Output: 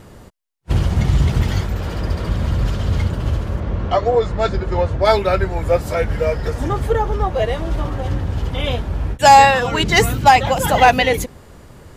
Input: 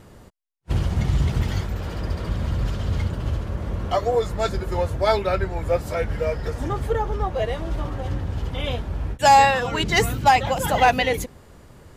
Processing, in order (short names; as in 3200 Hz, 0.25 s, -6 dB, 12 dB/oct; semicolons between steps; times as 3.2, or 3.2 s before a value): 3.6–5.05 air absorption 110 m; gain +5.5 dB